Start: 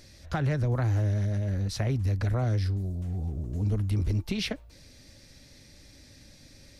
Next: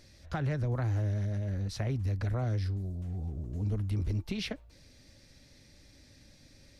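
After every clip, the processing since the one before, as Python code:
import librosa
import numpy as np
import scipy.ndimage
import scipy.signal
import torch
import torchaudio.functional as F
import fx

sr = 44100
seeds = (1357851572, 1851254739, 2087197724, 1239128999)

y = fx.high_shelf(x, sr, hz=6800.0, db=-4.5)
y = F.gain(torch.from_numpy(y), -4.5).numpy()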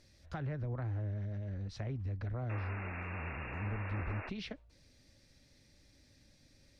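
y = fx.spec_paint(x, sr, seeds[0], shape='noise', start_s=2.49, length_s=1.81, low_hz=200.0, high_hz=2800.0, level_db=-38.0)
y = fx.env_lowpass_down(y, sr, base_hz=2300.0, full_db=-27.0)
y = F.gain(torch.from_numpy(y), -7.0).numpy()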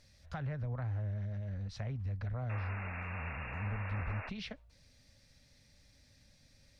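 y = fx.peak_eq(x, sr, hz=340.0, db=-12.5, octaves=0.56)
y = F.gain(torch.from_numpy(y), 1.0).numpy()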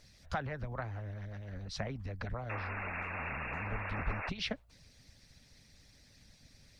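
y = fx.hpss(x, sr, part='harmonic', gain_db=-15)
y = F.gain(torch.from_numpy(y), 9.0).numpy()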